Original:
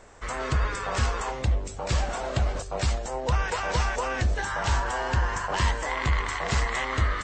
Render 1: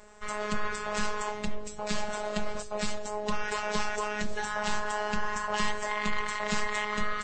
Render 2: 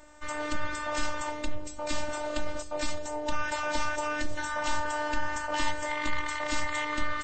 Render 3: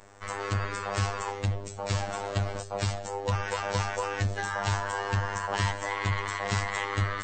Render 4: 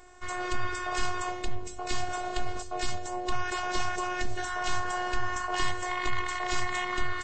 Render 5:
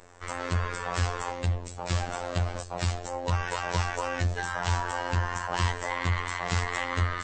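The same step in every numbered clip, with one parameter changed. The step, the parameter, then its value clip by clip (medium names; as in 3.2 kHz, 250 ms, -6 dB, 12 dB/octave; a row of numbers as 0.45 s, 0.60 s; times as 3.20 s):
robot voice, frequency: 210 Hz, 300 Hz, 100 Hz, 360 Hz, 88 Hz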